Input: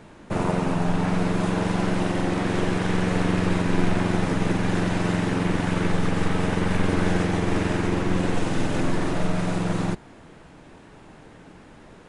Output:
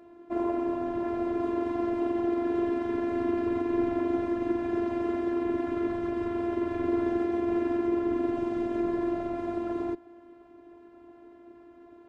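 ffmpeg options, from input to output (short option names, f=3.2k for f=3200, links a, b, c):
-af "afftfilt=real='hypot(re,im)*cos(PI*b)':imag='0':win_size=512:overlap=0.75,bandpass=f=340:t=q:w=0.71:csg=0,volume=2dB"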